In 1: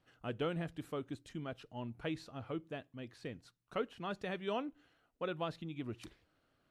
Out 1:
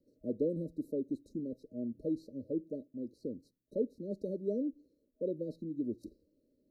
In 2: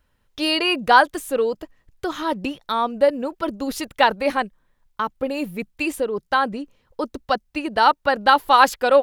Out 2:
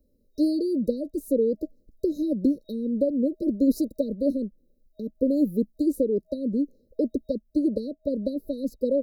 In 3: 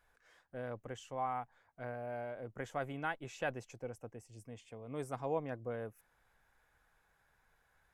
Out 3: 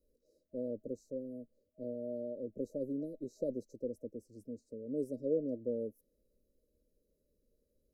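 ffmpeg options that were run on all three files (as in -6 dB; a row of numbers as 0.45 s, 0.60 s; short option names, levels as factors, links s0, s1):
-filter_complex "[0:a]acrossover=split=240[s0][s1];[s1]acompressor=threshold=0.0447:ratio=6[s2];[s0][s2]amix=inputs=2:normalize=0,equalizer=f=125:t=o:w=1:g=-9,equalizer=f=250:t=o:w=1:g=10,equalizer=f=500:t=o:w=1:g=5,equalizer=f=1000:t=o:w=1:g=-7,equalizer=f=2000:t=o:w=1:g=-10,equalizer=f=4000:t=o:w=1:g=-6,equalizer=f=8000:t=o:w=1:g=-9,afftfilt=real='re*(1-between(b*sr/4096,630,3800))':imag='im*(1-between(b*sr/4096,630,3800))':win_size=4096:overlap=0.75"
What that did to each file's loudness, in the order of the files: +4.0 LU, -6.0 LU, +2.0 LU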